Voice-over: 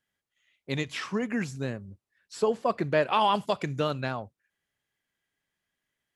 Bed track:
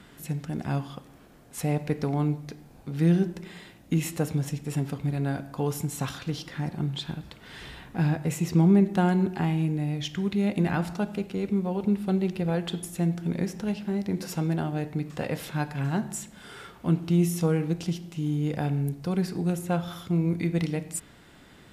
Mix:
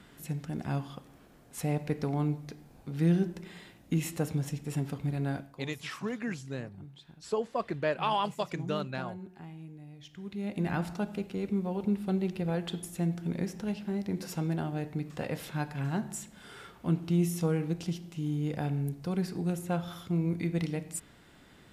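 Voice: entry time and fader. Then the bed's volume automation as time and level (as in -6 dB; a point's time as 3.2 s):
4.90 s, -5.5 dB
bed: 5.36 s -4 dB
5.64 s -20 dB
9.95 s -20 dB
10.73 s -4.5 dB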